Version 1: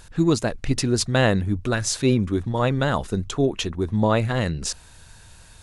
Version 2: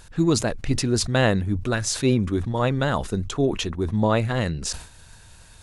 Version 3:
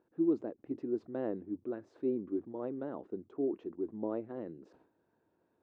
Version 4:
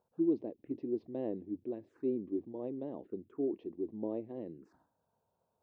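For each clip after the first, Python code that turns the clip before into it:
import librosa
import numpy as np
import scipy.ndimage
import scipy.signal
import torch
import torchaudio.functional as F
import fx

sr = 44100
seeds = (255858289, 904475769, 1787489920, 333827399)

y1 = fx.sustainer(x, sr, db_per_s=110.0)
y1 = F.gain(torch.from_numpy(y1), -1.0).numpy()
y2 = fx.ladder_bandpass(y1, sr, hz=370.0, resonance_pct=55)
y2 = F.gain(torch.from_numpy(y2), -3.5).numpy()
y3 = fx.env_phaser(y2, sr, low_hz=310.0, high_hz=1400.0, full_db=-37.5)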